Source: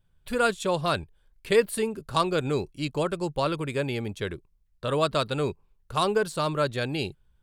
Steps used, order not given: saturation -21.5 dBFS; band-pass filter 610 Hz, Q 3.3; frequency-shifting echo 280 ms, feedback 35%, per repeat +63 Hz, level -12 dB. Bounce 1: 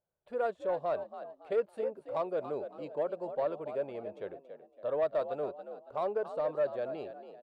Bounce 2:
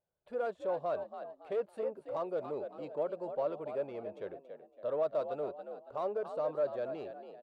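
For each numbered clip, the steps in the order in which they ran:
frequency-shifting echo > band-pass filter > saturation; frequency-shifting echo > saturation > band-pass filter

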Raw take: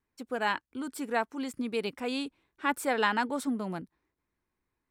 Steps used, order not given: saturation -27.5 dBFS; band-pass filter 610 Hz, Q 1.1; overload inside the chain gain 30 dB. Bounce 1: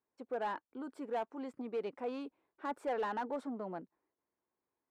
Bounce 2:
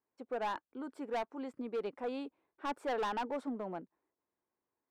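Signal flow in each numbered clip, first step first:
saturation > band-pass filter > overload inside the chain; band-pass filter > overload inside the chain > saturation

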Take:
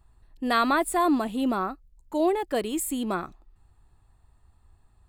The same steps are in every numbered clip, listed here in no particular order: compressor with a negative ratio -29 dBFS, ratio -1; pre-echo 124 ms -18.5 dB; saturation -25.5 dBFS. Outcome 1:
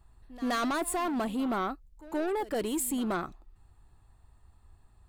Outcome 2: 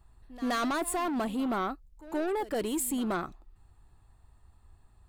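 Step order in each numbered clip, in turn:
saturation > compressor with a negative ratio > pre-echo; saturation > pre-echo > compressor with a negative ratio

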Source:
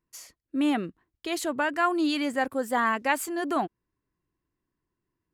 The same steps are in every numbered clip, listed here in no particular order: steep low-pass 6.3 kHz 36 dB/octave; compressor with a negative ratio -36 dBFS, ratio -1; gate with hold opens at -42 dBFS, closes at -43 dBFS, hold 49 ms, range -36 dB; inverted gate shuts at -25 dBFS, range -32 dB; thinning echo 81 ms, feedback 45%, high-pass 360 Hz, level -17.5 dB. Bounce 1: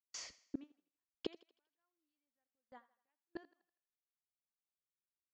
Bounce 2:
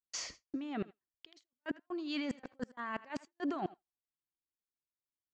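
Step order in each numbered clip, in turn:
inverted gate > steep low-pass > gate with hold > compressor with a negative ratio > thinning echo; steep low-pass > compressor with a negative ratio > inverted gate > thinning echo > gate with hold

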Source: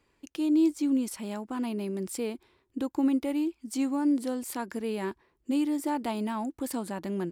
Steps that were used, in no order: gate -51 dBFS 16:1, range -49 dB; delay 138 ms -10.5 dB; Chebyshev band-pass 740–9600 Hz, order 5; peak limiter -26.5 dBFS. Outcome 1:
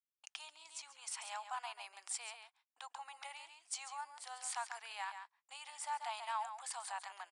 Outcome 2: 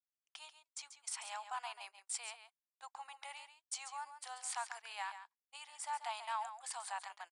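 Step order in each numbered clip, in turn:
gate > delay > peak limiter > Chebyshev band-pass; peak limiter > Chebyshev band-pass > gate > delay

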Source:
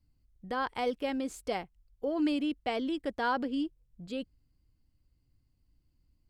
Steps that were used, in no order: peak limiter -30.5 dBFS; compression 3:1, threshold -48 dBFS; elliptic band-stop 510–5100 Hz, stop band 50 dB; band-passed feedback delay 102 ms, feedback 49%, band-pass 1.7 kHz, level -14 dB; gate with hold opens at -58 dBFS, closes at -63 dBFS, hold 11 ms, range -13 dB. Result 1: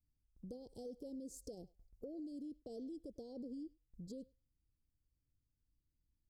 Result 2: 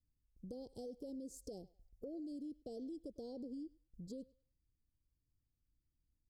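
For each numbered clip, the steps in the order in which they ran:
peak limiter > elliptic band-stop > compression > band-passed feedback delay > gate with hold; gate with hold > elliptic band-stop > peak limiter > compression > band-passed feedback delay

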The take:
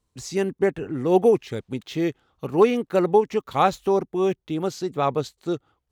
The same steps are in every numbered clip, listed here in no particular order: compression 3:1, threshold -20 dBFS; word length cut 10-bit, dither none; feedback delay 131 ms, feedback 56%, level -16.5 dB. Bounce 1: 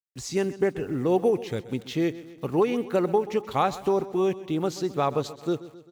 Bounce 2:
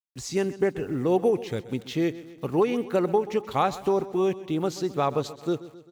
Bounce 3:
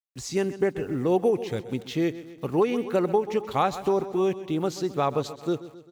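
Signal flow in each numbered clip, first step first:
compression > word length cut > feedback delay; word length cut > compression > feedback delay; word length cut > feedback delay > compression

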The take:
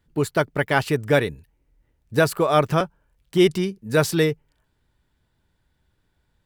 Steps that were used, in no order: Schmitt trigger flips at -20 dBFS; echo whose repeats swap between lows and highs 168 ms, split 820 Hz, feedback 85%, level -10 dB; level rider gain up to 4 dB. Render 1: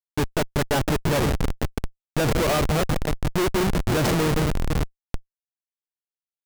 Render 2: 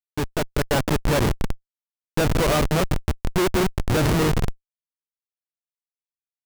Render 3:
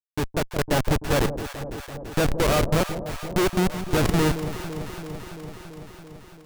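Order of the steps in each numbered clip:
echo whose repeats swap between lows and highs > level rider > Schmitt trigger; echo whose repeats swap between lows and highs > Schmitt trigger > level rider; Schmitt trigger > echo whose repeats swap between lows and highs > level rider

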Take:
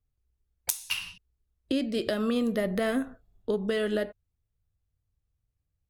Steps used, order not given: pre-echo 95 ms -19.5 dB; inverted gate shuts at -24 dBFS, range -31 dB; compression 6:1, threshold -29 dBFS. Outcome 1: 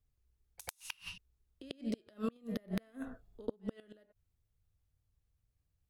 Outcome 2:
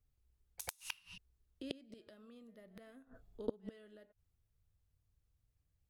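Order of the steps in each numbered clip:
compression > pre-echo > inverted gate; pre-echo > inverted gate > compression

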